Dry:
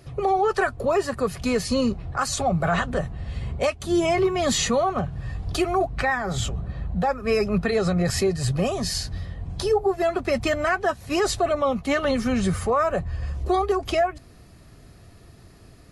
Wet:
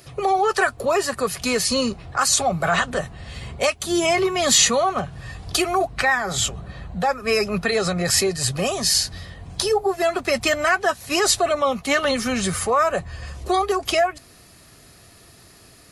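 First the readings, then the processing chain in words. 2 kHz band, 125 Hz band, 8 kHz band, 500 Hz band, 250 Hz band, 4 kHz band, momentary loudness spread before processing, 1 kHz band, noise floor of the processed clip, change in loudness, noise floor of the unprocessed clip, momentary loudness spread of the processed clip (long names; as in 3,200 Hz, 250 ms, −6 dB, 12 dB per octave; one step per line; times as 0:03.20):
+5.5 dB, −4.0 dB, +10.5 dB, +1.0 dB, −1.5 dB, +8.5 dB, 8 LU, +3.0 dB, −49 dBFS, +3.5 dB, −49 dBFS, 10 LU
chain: spectral tilt +2.5 dB per octave
level +3.5 dB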